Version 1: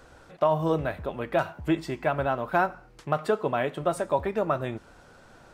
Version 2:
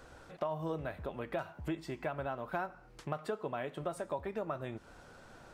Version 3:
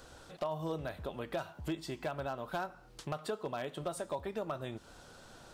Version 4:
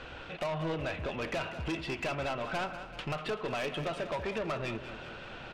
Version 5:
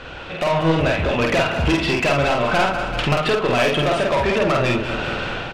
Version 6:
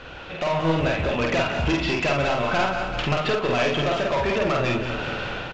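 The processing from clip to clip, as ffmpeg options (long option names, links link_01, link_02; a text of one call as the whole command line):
ffmpeg -i in.wav -af "acompressor=threshold=-36dB:ratio=2.5,volume=-2.5dB" out.wav
ffmpeg -i in.wav -af "asoftclip=type=hard:threshold=-27.5dB,highshelf=frequency=6000:gain=-10,aexciter=amount=3.8:drive=4.3:freq=3100" out.wav
ffmpeg -i in.wav -af "lowpass=frequency=2600:width_type=q:width=3.8,asoftclip=type=tanh:threshold=-38dB,aecho=1:1:192|384|576|768|960|1152|1344:0.251|0.148|0.0874|0.0516|0.0304|0.018|0.0106,volume=8dB" out.wav
ffmpeg -i in.wav -filter_complex "[0:a]dynaudnorm=framelen=260:gausssize=5:maxgain=12dB,alimiter=limit=-22.5dB:level=0:latency=1:release=483,asplit=2[link_01][link_02];[link_02]adelay=49,volume=-2dB[link_03];[link_01][link_03]amix=inputs=2:normalize=0,volume=8.5dB" out.wav
ffmpeg -i in.wav -af "aecho=1:1:176:0.266,volume=-4.5dB" -ar 16000 -c:a pcm_alaw out.wav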